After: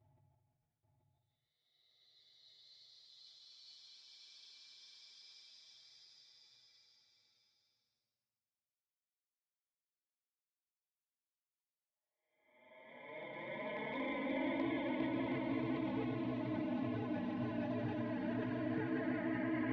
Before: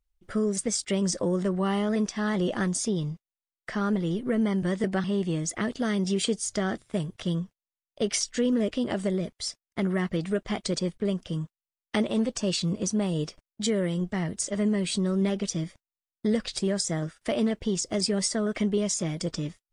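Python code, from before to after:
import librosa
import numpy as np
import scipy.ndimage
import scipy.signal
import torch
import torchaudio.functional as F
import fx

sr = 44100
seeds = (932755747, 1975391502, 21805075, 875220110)

y = fx.cycle_switch(x, sr, every=3, mode='inverted')
y = scipy.signal.sosfilt(scipy.signal.butter(4, 3600.0, 'lowpass', fs=sr, output='sos'), y)
y = fx.noise_reduce_blind(y, sr, reduce_db=19)
y = scipy.signal.sosfilt(scipy.signal.butter(4, 120.0, 'highpass', fs=sr, output='sos'), y)
y = fx.high_shelf(y, sr, hz=2600.0, db=-3.5)
y = fx.level_steps(y, sr, step_db=22)
y = fx.paulstretch(y, sr, seeds[0], factor=30.0, window_s=0.1, from_s=9.32)
y = y + 10.0 ** (-5.5 / 20.0) * np.pad(y, (int(831 * sr / 1000.0), 0))[:len(y)]
y = fx.env_flanger(y, sr, rest_ms=8.3, full_db=-29.0)
y = fx.sustainer(y, sr, db_per_s=43.0)
y = y * librosa.db_to_amplitude(7.5)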